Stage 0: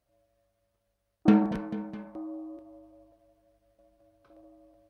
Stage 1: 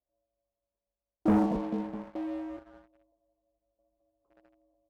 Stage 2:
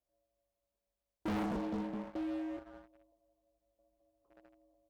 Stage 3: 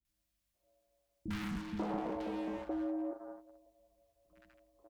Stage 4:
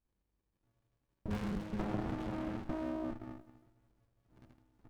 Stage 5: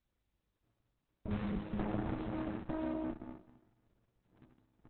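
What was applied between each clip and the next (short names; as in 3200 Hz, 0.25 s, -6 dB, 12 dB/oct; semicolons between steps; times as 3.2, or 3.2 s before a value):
steep low-pass 1100 Hz 48 dB/oct; bell 120 Hz -14 dB 0.83 oct; sample leveller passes 3; gain -6.5 dB
soft clip -34.5 dBFS, distortion -5 dB; gain +1 dB
compressor, threshold -40 dBFS, peak gain reduction 5.5 dB; three bands offset in time lows, highs, mids 50/540 ms, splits 250/1200 Hz; on a send at -17 dB: reverb RT60 0.35 s, pre-delay 6 ms; on the sum: gain +7.5 dB
running maximum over 65 samples; gain +3.5 dB
gain +1 dB; Opus 8 kbps 48000 Hz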